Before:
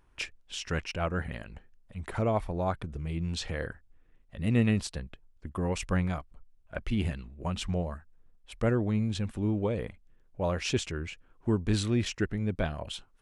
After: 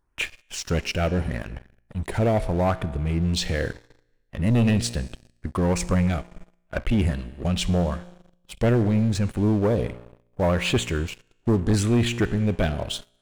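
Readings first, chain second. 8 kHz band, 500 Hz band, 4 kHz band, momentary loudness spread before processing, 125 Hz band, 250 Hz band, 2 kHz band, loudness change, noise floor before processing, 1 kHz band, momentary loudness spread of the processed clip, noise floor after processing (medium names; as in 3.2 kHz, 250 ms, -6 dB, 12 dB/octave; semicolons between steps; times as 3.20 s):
+8.0 dB, +7.5 dB, +7.5 dB, 15 LU, +8.0 dB, +7.5 dB, +6.5 dB, +7.5 dB, -62 dBFS, +6.0 dB, 13 LU, -67 dBFS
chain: LFO notch sine 0.77 Hz 1–5.7 kHz; feedback comb 59 Hz, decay 1.4 s, harmonics all, mix 50%; waveshaping leveller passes 3; trim +4 dB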